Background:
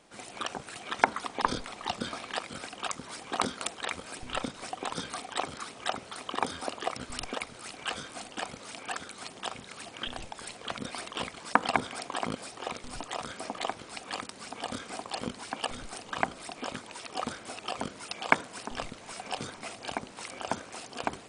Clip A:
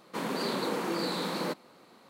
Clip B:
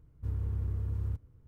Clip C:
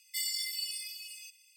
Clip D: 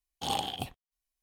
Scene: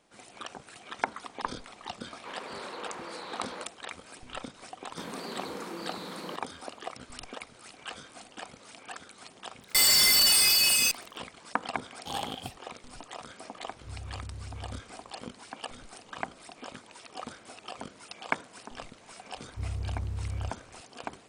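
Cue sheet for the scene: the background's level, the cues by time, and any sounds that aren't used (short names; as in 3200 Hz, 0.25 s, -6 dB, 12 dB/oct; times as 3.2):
background -6.5 dB
2.11 add A -6 dB + three-band isolator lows -16 dB, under 430 Hz, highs -21 dB, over 4300 Hz
4.83 add A -8 dB
9.61 add C -6.5 dB + fuzz box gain 53 dB, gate -54 dBFS
11.84 add D -4 dB
13.64 add B -9 dB + spectral swells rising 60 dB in 0.34 s
19.34 add B -1 dB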